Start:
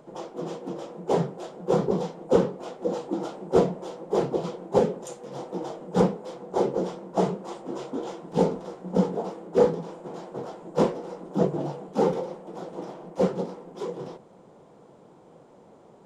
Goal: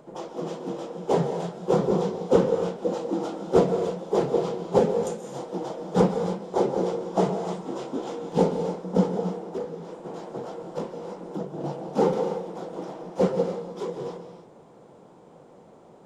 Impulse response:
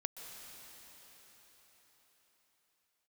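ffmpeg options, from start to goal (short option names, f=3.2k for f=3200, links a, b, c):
-filter_complex "[0:a]asettb=1/sr,asplit=3[a][b][c];[a]atrim=end=9.174[d];[b]atrim=start=9.17:end=11.64,asetpts=PTS-STARTPTS,afade=t=in:d=0.004:c=qsin,afade=t=out:st=2.466:d=0.004:c=qsin,acompressor=threshold=-31dB:ratio=6[e];[c]atrim=start=11.636[f];[d][e]acrossfade=d=0.004:c1=hsin:c2=qsin[g];[g][f]acrossfade=d=0.004:c1=qsin:c2=hsin[h];[1:a]atrim=start_sample=2205,afade=t=out:st=0.37:d=0.01,atrim=end_sample=16758[i];[h][i]afir=irnorm=-1:irlink=0,volume=3.5dB"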